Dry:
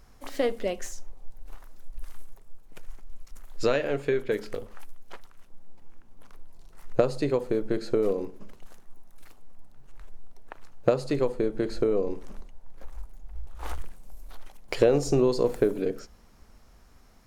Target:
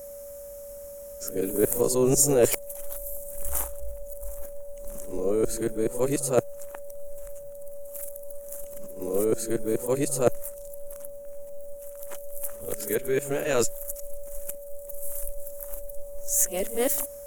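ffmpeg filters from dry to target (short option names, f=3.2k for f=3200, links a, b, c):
-af "areverse,aeval=exprs='val(0)+0.0112*sin(2*PI*570*n/s)':c=same,aexciter=amount=10.9:drive=8.1:freq=6.8k"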